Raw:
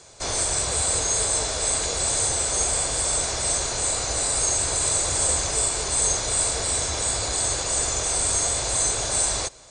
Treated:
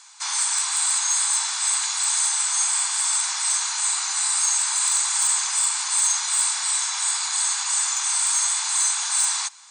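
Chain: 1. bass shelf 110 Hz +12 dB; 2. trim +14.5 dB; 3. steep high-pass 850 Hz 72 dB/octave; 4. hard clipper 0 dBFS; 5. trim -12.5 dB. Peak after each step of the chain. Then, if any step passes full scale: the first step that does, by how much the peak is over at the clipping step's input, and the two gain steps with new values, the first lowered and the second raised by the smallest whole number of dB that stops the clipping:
-8.0 dBFS, +6.5 dBFS, +5.5 dBFS, 0.0 dBFS, -12.5 dBFS; step 2, 5.5 dB; step 2 +8.5 dB, step 5 -6.5 dB

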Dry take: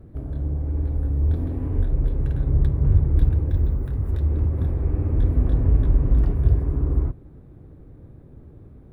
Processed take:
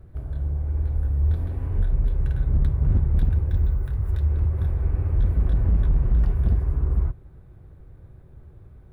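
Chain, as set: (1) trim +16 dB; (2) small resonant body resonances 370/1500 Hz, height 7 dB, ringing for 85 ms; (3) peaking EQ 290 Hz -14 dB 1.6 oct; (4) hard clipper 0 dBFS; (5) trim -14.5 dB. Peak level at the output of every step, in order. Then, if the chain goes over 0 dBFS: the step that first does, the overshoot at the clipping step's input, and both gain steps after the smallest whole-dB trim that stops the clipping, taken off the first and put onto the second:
+9.5 dBFS, +9.5 dBFS, +8.0 dBFS, 0.0 dBFS, -14.5 dBFS; step 1, 8.0 dB; step 1 +8 dB, step 5 -6.5 dB

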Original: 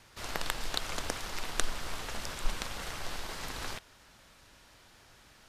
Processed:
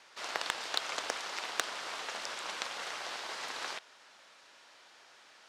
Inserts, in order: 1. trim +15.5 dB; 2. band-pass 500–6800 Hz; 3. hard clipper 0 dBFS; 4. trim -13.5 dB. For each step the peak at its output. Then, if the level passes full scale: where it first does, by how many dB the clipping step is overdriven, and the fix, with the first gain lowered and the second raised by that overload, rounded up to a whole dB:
+7.5 dBFS, +5.5 dBFS, 0.0 dBFS, -13.5 dBFS; step 1, 5.5 dB; step 1 +9.5 dB, step 4 -7.5 dB

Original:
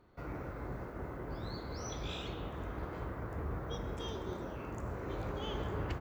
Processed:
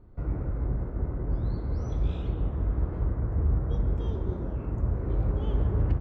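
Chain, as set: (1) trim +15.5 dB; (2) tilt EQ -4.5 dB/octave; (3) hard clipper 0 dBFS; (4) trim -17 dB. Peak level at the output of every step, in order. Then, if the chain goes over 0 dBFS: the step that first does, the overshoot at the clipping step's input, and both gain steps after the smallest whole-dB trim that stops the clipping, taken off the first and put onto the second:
-11.0 dBFS, +4.0 dBFS, 0.0 dBFS, -17.0 dBFS; step 2, 4.0 dB; step 1 +11.5 dB, step 4 -13 dB

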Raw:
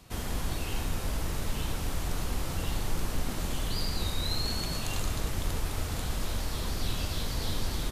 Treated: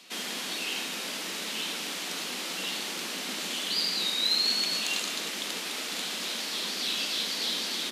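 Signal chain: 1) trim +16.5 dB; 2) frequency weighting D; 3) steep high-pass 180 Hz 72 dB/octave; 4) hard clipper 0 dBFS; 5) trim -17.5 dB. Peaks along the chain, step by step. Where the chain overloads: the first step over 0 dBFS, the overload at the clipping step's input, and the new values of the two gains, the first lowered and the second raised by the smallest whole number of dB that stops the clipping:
-1.0 dBFS, +3.0 dBFS, +3.0 dBFS, 0.0 dBFS, -17.5 dBFS; step 2, 3.0 dB; step 1 +13.5 dB, step 5 -14.5 dB

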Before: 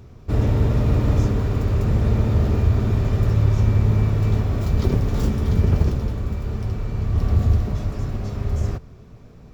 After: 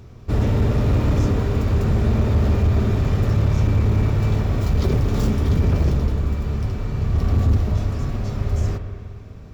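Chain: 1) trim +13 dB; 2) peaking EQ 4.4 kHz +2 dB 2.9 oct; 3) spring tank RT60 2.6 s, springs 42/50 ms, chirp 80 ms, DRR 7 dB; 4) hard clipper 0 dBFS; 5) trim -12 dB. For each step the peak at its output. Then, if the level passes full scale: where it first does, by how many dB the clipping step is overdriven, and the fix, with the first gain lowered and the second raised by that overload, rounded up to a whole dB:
+8.0 dBFS, +8.0 dBFS, +8.0 dBFS, 0.0 dBFS, -12.0 dBFS; step 1, 8.0 dB; step 1 +5 dB, step 5 -4 dB

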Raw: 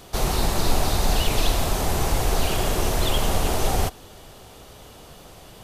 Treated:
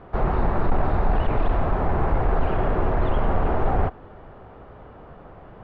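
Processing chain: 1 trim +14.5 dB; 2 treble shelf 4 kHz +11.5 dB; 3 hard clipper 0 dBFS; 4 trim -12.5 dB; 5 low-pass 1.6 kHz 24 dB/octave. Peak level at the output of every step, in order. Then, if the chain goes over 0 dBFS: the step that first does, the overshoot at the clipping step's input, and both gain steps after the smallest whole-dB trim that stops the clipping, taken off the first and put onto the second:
+7.0 dBFS, +9.5 dBFS, 0.0 dBFS, -12.5 dBFS, -12.0 dBFS; step 1, 9.5 dB; step 1 +4.5 dB, step 4 -2.5 dB

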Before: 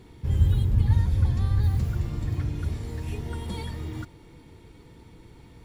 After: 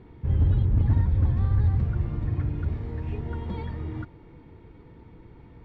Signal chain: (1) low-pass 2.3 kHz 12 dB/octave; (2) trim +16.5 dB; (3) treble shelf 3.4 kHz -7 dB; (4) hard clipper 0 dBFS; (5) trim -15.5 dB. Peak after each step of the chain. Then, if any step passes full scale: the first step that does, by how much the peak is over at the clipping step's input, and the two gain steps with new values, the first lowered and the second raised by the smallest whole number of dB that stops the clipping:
-9.0 dBFS, +7.5 dBFS, +7.5 dBFS, 0.0 dBFS, -15.5 dBFS; step 2, 7.5 dB; step 2 +8.5 dB, step 5 -7.5 dB

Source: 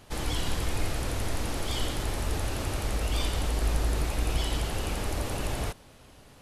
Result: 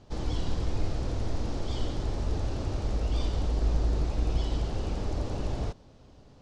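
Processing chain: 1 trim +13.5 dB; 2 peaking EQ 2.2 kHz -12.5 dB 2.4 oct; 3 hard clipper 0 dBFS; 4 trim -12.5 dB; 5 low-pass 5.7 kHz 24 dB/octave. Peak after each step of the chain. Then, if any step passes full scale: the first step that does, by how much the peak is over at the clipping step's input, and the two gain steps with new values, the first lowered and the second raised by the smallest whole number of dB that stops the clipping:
-1.0 dBFS, -1.5 dBFS, -1.5 dBFS, -14.0 dBFS, -14.5 dBFS; nothing clips

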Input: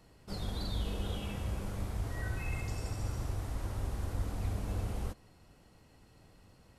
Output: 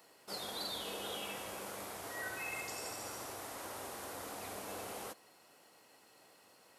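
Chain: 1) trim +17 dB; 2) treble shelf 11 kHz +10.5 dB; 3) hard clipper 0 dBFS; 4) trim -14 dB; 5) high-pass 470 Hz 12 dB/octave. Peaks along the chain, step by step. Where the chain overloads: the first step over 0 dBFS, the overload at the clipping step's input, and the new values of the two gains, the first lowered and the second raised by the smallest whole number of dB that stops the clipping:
-6.0 dBFS, -6.0 dBFS, -6.0 dBFS, -20.0 dBFS, -28.5 dBFS; nothing clips

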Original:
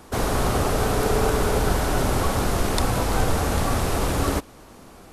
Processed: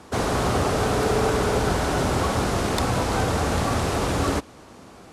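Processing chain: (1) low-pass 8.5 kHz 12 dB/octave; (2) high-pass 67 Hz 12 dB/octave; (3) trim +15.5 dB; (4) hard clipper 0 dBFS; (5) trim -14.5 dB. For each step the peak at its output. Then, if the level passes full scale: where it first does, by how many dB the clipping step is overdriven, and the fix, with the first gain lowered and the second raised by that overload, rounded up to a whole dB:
-5.5 dBFS, -6.0 dBFS, +9.5 dBFS, 0.0 dBFS, -14.5 dBFS; step 3, 9.5 dB; step 3 +5.5 dB, step 5 -4.5 dB

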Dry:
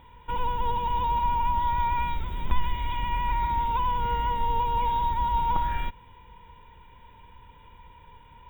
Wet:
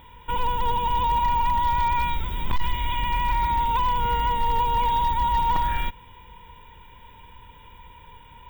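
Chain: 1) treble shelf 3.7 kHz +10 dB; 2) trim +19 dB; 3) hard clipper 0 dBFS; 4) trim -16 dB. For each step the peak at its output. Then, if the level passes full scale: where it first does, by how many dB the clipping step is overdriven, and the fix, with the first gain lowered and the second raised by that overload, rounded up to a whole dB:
-9.5 dBFS, +9.5 dBFS, 0.0 dBFS, -16.0 dBFS; step 2, 9.5 dB; step 2 +9 dB, step 4 -6 dB

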